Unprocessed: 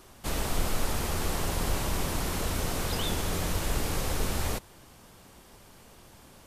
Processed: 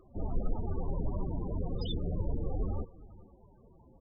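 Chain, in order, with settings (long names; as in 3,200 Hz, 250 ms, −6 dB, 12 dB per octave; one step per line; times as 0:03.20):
phase-vocoder stretch with locked phases 0.62×
single-tap delay 421 ms −20 dB
spectral peaks only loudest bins 16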